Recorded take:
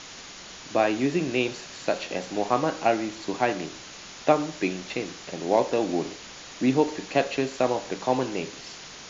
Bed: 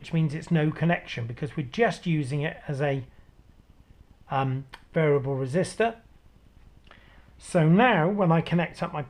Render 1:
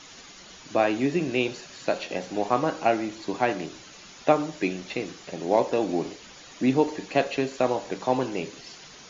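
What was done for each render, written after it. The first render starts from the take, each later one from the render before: denoiser 8 dB, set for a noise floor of -43 dBFS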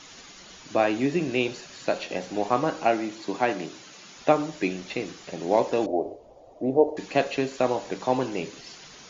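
2.85–4.15 HPF 130 Hz; 5.86–6.97 EQ curve 110 Hz 0 dB, 170 Hz -13 dB, 650 Hz +10 dB, 1500 Hz -26 dB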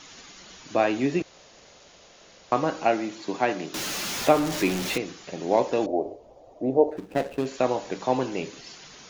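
1.22–2.52 room tone; 3.74–4.98 zero-crossing step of -26 dBFS; 6.91–7.46 median filter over 41 samples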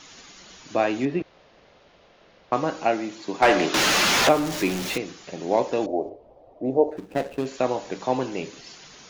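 1.05–2.53 air absorption 260 m; 3.42–4.29 overdrive pedal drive 25 dB, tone 2400 Hz, clips at -7 dBFS; 6.09–6.65 air absorption 280 m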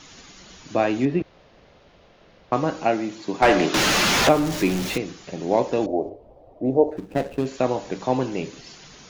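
low shelf 230 Hz +8.5 dB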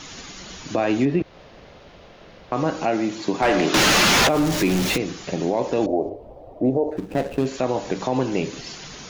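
in parallel at +2.5 dB: compressor, threshold -28 dBFS, peak gain reduction 16 dB; on the sum: limiter -11 dBFS, peak gain reduction 8.5 dB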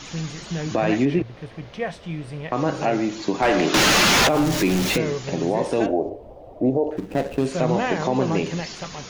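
add bed -5 dB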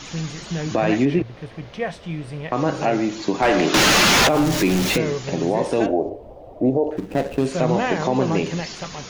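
gain +1.5 dB

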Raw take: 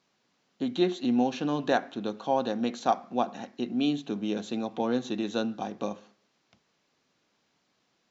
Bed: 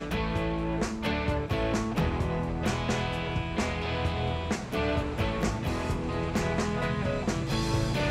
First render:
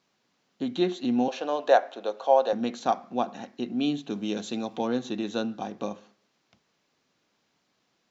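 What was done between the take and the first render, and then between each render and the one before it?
1.28–2.53 resonant high-pass 570 Hz, resonance Q 2.8; 4.1–4.88 high shelf 3600 Hz +7.5 dB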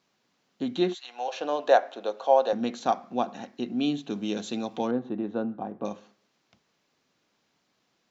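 0.93–1.39 HPF 1200 Hz -> 410 Hz 24 dB/oct; 4.91–5.85 LPF 1200 Hz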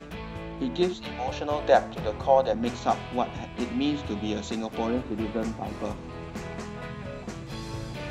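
add bed -8 dB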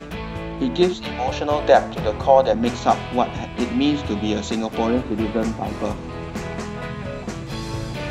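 gain +7.5 dB; limiter -2 dBFS, peak gain reduction 3 dB

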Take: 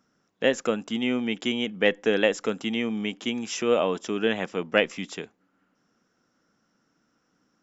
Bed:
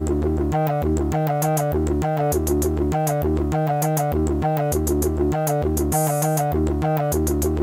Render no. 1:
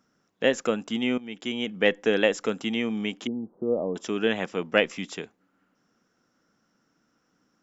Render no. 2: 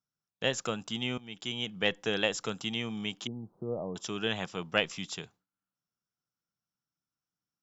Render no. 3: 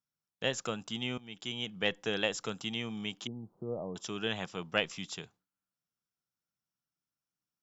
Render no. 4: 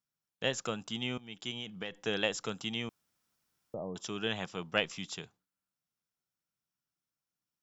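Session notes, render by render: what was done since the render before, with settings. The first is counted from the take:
1.18–1.74 fade in, from -17 dB; 3.27–3.96 Gaussian blur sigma 13 samples
gate with hold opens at -53 dBFS; ten-band EQ 125 Hz +7 dB, 250 Hz -11 dB, 500 Hz -8 dB, 2000 Hz -8 dB, 4000 Hz +4 dB
gain -2.5 dB
1.5–2.05 compressor, threshold -35 dBFS; 2.89–3.74 room tone

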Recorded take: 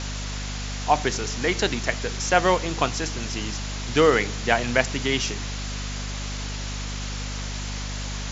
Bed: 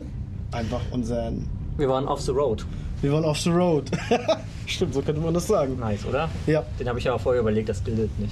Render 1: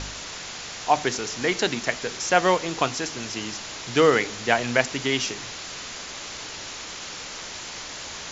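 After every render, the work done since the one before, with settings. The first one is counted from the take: de-hum 50 Hz, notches 5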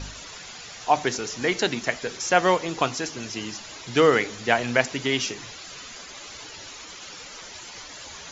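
denoiser 11 dB, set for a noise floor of -37 dBFS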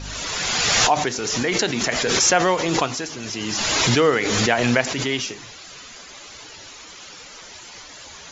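backwards sustainer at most 21 dB/s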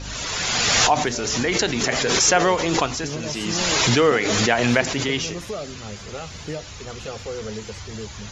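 add bed -9.5 dB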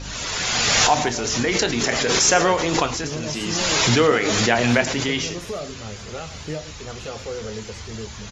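reverse delay 0.11 s, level -13 dB; doubler 26 ms -12 dB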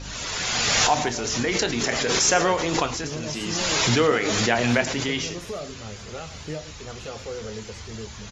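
gain -3 dB

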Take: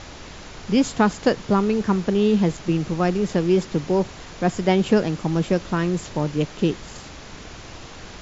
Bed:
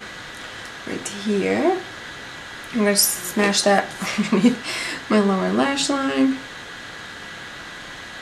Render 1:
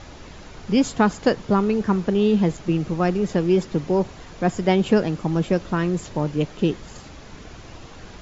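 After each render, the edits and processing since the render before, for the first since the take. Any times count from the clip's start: denoiser 6 dB, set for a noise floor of -40 dBFS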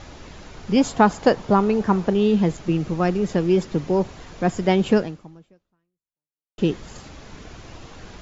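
0.76–2.13 bell 780 Hz +6 dB 1.1 oct; 4.97–6.58 fade out exponential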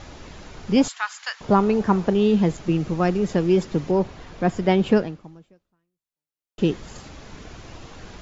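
0.88–1.41 HPF 1400 Hz 24 dB/oct; 3.91–5.24 air absorption 78 m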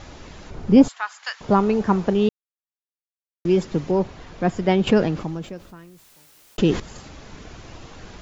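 0.5–1.25 tilt shelf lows +6.5 dB, about 1100 Hz; 2.29–3.45 mute; 4.87–6.8 fast leveller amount 50%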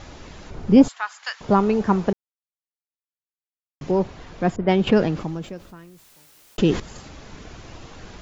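2.13–3.81 mute; 4.56–4.96 low-pass opened by the level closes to 500 Hz, open at -13 dBFS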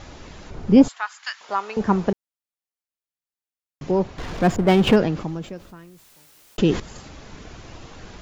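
1.06–1.77 HPF 990 Hz; 4.18–4.96 power-law curve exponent 0.7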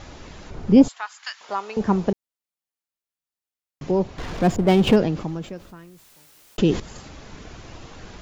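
dynamic EQ 1500 Hz, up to -5 dB, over -35 dBFS, Q 1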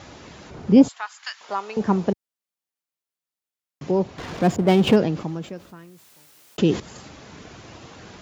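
HPF 96 Hz 12 dB/oct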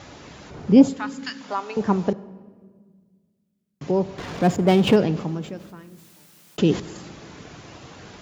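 shoebox room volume 1800 m³, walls mixed, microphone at 0.33 m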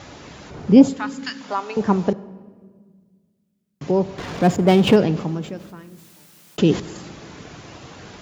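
gain +2.5 dB; limiter -1 dBFS, peak gain reduction 1 dB

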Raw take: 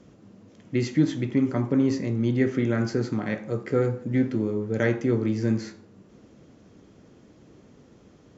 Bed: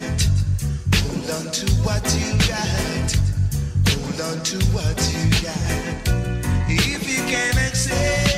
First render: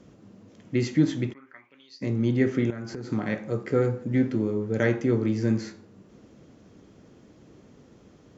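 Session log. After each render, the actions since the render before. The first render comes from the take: 1.32–2.01 band-pass 1100 Hz -> 5000 Hz, Q 7.4; 2.7–3.11 compressor, threshold -32 dBFS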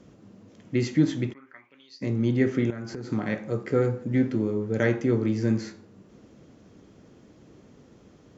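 nothing audible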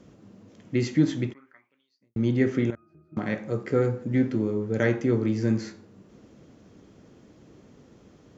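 1.25–2.16 fade out quadratic; 2.75–3.17 octave resonator D#, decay 0.45 s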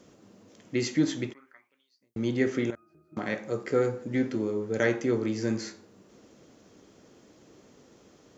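tone controls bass -9 dB, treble +6 dB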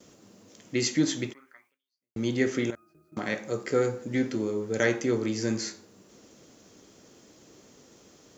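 gate with hold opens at -54 dBFS; high shelf 4000 Hz +10 dB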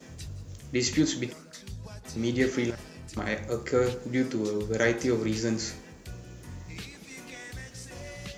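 add bed -22.5 dB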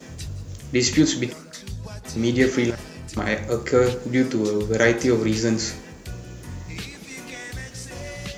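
gain +7 dB

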